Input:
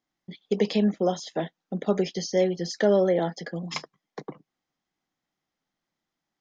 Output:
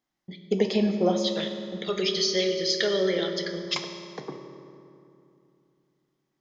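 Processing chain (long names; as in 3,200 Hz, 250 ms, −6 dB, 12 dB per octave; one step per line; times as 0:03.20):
0:01.24–0:03.75: drawn EQ curve 120 Hz 0 dB, 240 Hz −15 dB, 410 Hz −2 dB, 800 Hz −15 dB, 1,200 Hz +1 dB, 1,700 Hz +2 dB, 3,900 Hz +15 dB, 8,400 Hz −4 dB
convolution reverb RT60 2.7 s, pre-delay 9 ms, DRR 5 dB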